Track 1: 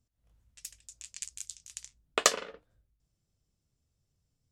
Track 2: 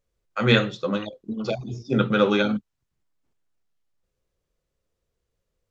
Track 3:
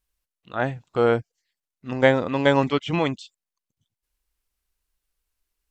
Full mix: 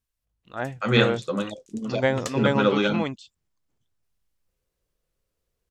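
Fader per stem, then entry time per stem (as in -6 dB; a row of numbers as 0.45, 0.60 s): -11.0, -1.5, -5.5 dB; 0.00, 0.45, 0.00 s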